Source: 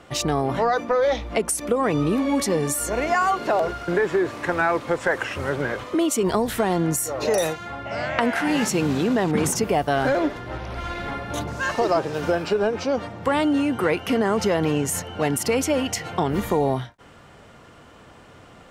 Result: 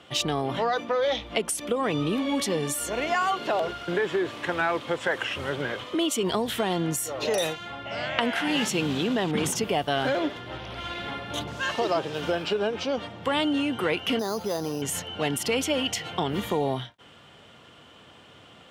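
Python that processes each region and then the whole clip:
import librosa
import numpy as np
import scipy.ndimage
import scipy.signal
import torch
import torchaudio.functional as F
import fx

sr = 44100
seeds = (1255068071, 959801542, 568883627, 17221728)

y = fx.chain(x, sr, fx.lowpass(hz=1100.0, slope=12),
    fx.low_shelf(hz=310.0, db=-7.5),
    fx.resample_bad(factor=8, down='none', up='hold'), at=(14.19, 14.82))
y = scipy.signal.sosfilt(scipy.signal.butter(2, 86.0, 'highpass', fs=sr, output='sos'), y)
y = fx.peak_eq(y, sr, hz=3200.0, db=12.0, octaves=0.61)
y = y * 10.0 ** (-5.0 / 20.0)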